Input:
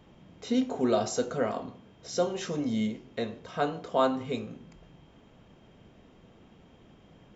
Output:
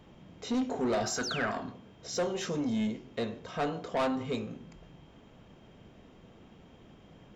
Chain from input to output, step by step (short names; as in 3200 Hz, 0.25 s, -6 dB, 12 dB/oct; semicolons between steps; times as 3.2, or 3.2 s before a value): 1.23–1.51 painted sound fall 930–6900 Hz -39 dBFS; soft clip -26 dBFS, distortion -10 dB; 1.03–1.72 thirty-one-band EQ 500 Hz -10 dB, 1600 Hz +11 dB, 5000 Hz +4 dB; gain +1 dB